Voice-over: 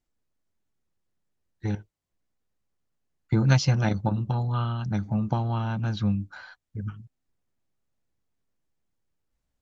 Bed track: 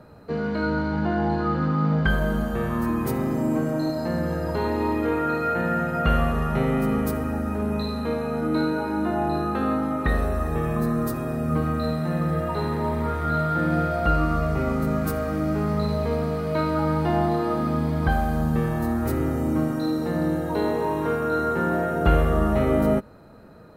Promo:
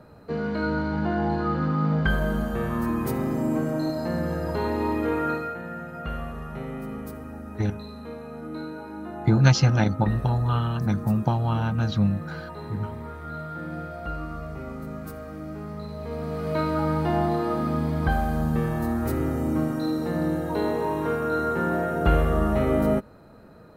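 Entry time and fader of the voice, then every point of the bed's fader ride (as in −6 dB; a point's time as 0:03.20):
5.95 s, +3.0 dB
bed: 0:05.31 −1.5 dB
0:05.59 −11.5 dB
0:15.93 −11.5 dB
0:16.48 −1.5 dB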